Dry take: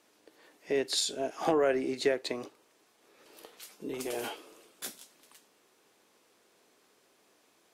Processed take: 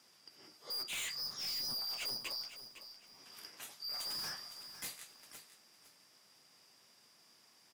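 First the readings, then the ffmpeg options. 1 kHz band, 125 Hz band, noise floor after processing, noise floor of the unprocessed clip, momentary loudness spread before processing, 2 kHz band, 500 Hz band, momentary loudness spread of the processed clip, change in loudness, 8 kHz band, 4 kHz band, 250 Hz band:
-15.5 dB, -12.0 dB, -66 dBFS, -68 dBFS, 18 LU, -7.0 dB, -28.0 dB, 18 LU, -7.5 dB, -5.5 dB, 0.0 dB, -24.0 dB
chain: -filter_complex "[0:a]afftfilt=real='real(if(lt(b,272),68*(eq(floor(b/68),0)*1+eq(floor(b/68),1)*2+eq(floor(b/68),2)*3+eq(floor(b/68),3)*0)+mod(b,68),b),0)':imag='imag(if(lt(b,272),68*(eq(floor(b/68),0)*1+eq(floor(b/68),1)*2+eq(floor(b/68),2)*3+eq(floor(b/68),3)*0)+mod(b,68),b),0)':win_size=2048:overlap=0.75,highpass=f=120:w=0.5412,highpass=f=120:w=1.3066,aeval=exprs='(tanh(89.1*val(0)+0.05)-tanh(0.05))/89.1':c=same,asplit=2[a][b];[b]aecho=0:1:507|1014|1521:0.251|0.0578|0.0133[c];[a][c]amix=inputs=2:normalize=0,volume=1dB"

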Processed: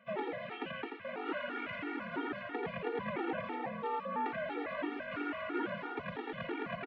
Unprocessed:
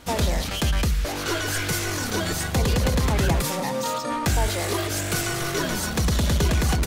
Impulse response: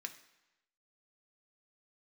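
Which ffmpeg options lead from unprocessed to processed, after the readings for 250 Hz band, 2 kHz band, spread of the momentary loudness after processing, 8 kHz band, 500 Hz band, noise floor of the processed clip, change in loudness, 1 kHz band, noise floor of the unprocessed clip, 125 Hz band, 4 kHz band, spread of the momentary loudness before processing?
-12.5 dB, -11.5 dB, 4 LU, under -40 dB, -10.5 dB, -46 dBFS, -15.0 dB, -9.5 dB, -29 dBFS, -27.5 dB, -22.5 dB, 4 LU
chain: -af "highpass=f=270:t=q:w=0.5412,highpass=f=270:t=q:w=1.307,lowpass=f=2.7k:t=q:w=0.5176,lowpass=f=2.7k:t=q:w=0.7071,lowpass=f=2.7k:t=q:w=1.932,afreqshift=-50,aecho=1:1:85:0.631,afftfilt=real='re*gt(sin(2*PI*3*pts/sr)*(1-2*mod(floor(b*sr/1024/240),2)),0)':imag='im*gt(sin(2*PI*3*pts/sr)*(1-2*mod(floor(b*sr/1024/240),2)),0)':win_size=1024:overlap=0.75,volume=-8dB"

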